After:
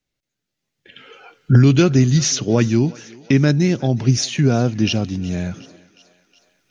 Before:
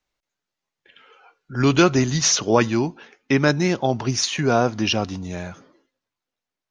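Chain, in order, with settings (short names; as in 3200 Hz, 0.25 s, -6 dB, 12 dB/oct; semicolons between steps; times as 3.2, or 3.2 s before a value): recorder AGC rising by 11 dB/s; ten-band EQ 125 Hz +9 dB, 250 Hz +4 dB, 1000 Hz -10 dB; thinning echo 0.365 s, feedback 61%, high-pass 430 Hz, level -20 dB; gain -1 dB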